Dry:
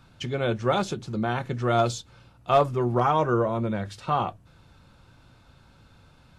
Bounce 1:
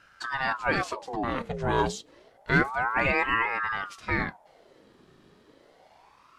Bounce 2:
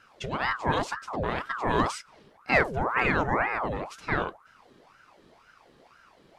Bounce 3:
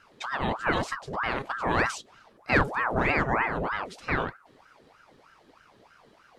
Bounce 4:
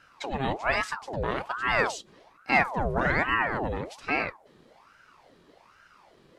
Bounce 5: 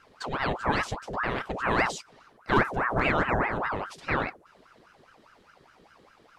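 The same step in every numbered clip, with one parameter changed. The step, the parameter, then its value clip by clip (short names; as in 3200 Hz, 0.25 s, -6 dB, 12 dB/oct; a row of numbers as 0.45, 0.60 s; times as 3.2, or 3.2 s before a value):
ring modulator with a swept carrier, at: 0.29, 2, 3.2, 1.2, 4.9 Hz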